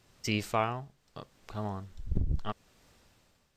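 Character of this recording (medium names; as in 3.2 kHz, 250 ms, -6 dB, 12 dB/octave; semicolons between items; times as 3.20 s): tremolo triangle 0.78 Hz, depth 75%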